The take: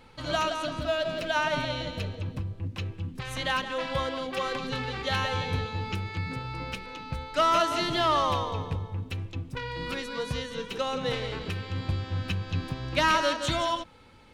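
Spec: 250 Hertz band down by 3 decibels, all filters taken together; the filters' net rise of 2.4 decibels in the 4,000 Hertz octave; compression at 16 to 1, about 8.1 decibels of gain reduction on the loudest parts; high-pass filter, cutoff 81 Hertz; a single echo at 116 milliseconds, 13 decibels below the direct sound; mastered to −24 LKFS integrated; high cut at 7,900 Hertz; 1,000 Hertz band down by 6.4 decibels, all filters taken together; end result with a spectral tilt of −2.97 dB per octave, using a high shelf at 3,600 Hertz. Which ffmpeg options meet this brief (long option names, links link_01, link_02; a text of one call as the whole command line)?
ffmpeg -i in.wav -af "highpass=81,lowpass=7900,equalizer=frequency=250:width_type=o:gain=-3.5,equalizer=frequency=1000:width_type=o:gain=-8,highshelf=frequency=3600:gain=-6,equalizer=frequency=4000:width_type=o:gain=7.5,acompressor=threshold=-31dB:ratio=16,aecho=1:1:116:0.224,volume=11.5dB" out.wav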